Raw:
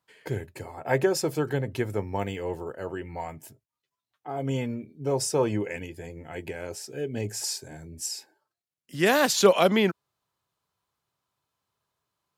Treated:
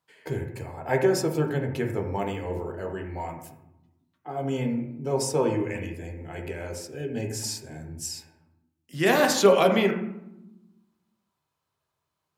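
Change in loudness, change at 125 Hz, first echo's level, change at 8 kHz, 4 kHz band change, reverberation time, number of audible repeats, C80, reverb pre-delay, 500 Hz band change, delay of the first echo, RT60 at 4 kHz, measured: +0.5 dB, +1.5 dB, no echo, -1.5 dB, -1.5 dB, 0.90 s, no echo, 9.5 dB, 12 ms, +1.5 dB, no echo, 0.55 s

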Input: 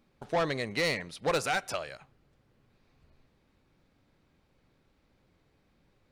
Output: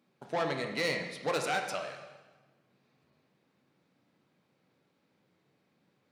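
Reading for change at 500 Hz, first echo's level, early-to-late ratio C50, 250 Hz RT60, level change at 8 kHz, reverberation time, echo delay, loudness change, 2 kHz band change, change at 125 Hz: -2.0 dB, no echo, 6.0 dB, 1.2 s, -3.0 dB, 1.2 s, no echo, -2.0 dB, -2.0 dB, -4.0 dB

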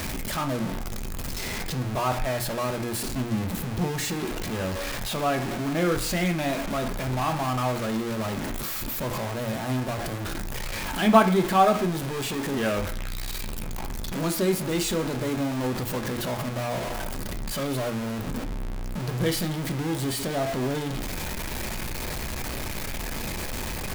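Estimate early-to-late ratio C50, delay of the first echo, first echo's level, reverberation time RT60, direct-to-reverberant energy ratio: 13.0 dB, no echo, no echo, 0.50 s, 5.0 dB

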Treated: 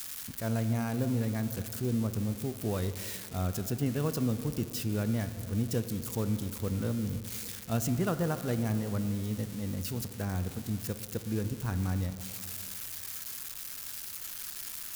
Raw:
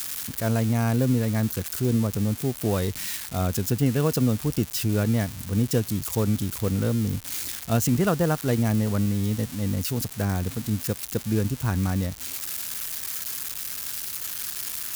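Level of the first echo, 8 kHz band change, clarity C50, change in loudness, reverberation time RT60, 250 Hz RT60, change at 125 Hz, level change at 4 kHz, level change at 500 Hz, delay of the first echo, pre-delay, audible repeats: no echo, -8.5 dB, 11.0 dB, -7.5 dB, 2.5 s, 2.3 s, -7.5 dB, -8.5 dB, -8.0 dB, no echo, 4 ms, no echo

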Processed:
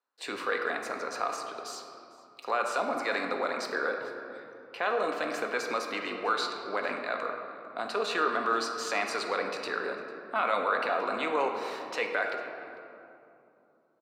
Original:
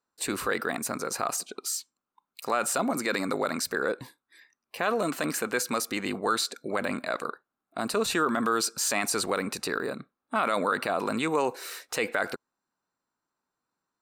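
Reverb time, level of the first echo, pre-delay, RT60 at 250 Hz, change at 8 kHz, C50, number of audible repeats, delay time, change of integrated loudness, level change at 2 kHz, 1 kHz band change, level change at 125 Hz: 2.8 s, -22.0 dB, 4 ms, 3.9 s, -13.5 dB, 4.5 dB, 1, 449 ms, -2.5 dB, -0.5 dB, 0.0 dB, under -10 dB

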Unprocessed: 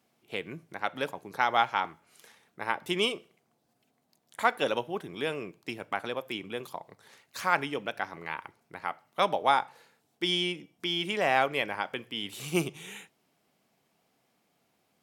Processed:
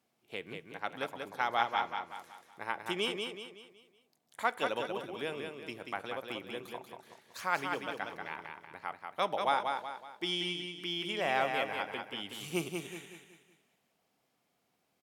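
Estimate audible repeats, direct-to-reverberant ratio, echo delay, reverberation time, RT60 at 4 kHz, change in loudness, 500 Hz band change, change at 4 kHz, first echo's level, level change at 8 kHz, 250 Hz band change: 4, no reverb, 187 ms, no reverb, no reverb, -5.0 dB, -4.5 dB, -4.5 dB, -5.0 dB, -4.5 dB, -5.5 dB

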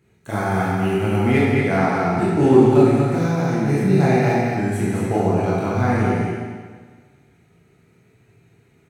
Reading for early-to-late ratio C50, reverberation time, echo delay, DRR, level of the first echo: -3.5 dB, 1.6 s, 221 ms, -8.5 dB, -4.5 dB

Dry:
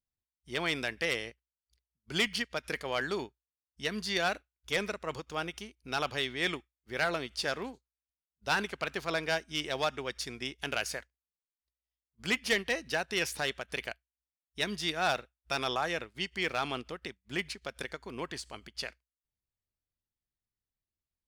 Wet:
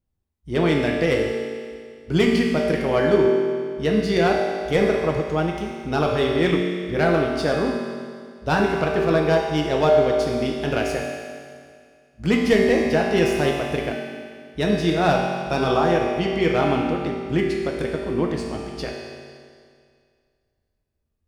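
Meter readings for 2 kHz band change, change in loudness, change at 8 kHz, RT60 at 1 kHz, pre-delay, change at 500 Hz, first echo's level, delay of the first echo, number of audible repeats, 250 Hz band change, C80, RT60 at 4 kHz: +5.5 dB, +12.5 dB, +1.5 dB, 2.1 s, 5 ms, +17.5 dB, no echo, no echo, no echo, +19.0 dB, 2.5 dB, 2.1 s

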